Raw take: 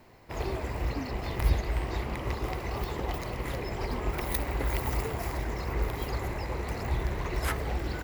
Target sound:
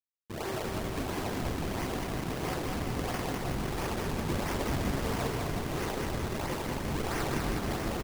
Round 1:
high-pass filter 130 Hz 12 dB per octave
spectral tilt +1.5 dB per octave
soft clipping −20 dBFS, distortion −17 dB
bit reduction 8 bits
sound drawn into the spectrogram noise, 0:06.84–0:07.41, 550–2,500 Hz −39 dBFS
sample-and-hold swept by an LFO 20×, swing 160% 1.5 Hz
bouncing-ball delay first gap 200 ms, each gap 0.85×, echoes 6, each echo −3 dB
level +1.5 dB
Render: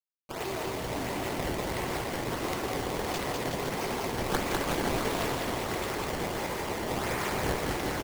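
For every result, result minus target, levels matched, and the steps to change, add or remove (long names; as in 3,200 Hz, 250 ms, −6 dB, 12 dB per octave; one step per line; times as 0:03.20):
sample-and-hold swept by an LFO: distortion −7 dB; soft clipping: distortion −5 dB
change: sample-and-hold swept by an LFO 55×, swing 160% 1.5 Hz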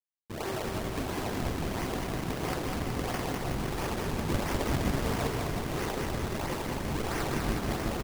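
soft clipping: distortion −5 dB
change: soft clipping −27.5 dBFS, distortion −12 dB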